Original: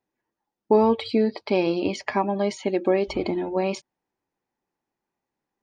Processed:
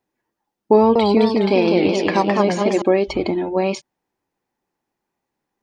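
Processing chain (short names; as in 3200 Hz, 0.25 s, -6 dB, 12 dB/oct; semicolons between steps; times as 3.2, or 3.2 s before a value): 0.75–2.82 warbling echo 0.207 s, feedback 54%, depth 182 cents, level -3 dB; gain +5 dB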